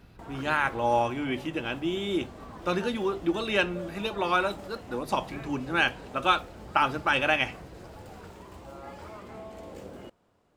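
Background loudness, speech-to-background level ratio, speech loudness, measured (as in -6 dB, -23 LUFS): -44.5 LUFS, 16.5 dB, -28.0 LUFS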